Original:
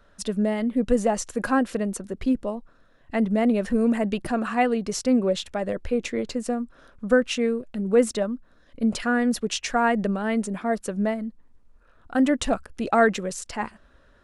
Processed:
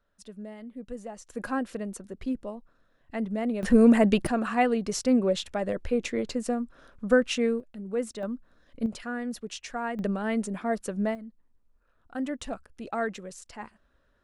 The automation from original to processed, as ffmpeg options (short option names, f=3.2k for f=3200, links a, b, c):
-af "asetnsamples=n=441:p=0,asendcmd='1.3 volume volume -8dB;3.63 volume volume 4dB;4.27 volume volume -2dB;7.6 volume volume -11dB;8.23 volume volume -4dB;8.86 volume volume -11dB;9.99 volume volume -3.5dB;11.15 volume volume -11.5dB',volume=-17.5dB"